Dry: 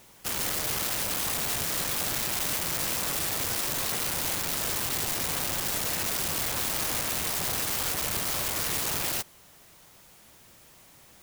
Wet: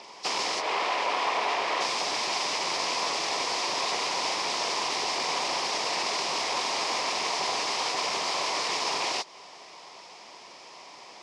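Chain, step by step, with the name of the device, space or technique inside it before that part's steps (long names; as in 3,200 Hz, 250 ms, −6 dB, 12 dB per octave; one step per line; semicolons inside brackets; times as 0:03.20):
0:00.60–0:01.82: bass and treble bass −11 dB, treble −14 dB
hearing aid with frequency lowering (hearing-aid frequency compression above 3,300 Hz 1.5 to 1; downward compressor 3 to 1, threshold −35 dBFS, peak gain reduction 7 dB; loudspeaker in its box 360–5,600 Hz, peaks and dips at 410 Hz +4 dB, 720 Hz +5 dB, 1,000 Hz +10 dB, 1,500 Hz −8 dB, 2,300 Hz +4 dB, 5,100 Hz +6 dB)
level +8.5 dB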